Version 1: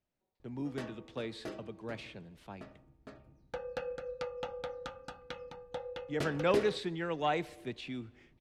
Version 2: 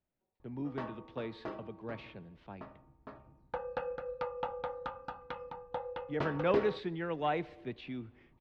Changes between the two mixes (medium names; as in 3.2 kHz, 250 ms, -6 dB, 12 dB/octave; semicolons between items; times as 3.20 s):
background: add peaking EQ 1 kHz +13.5 dB 0.59 oct; master: add distance through air 250 m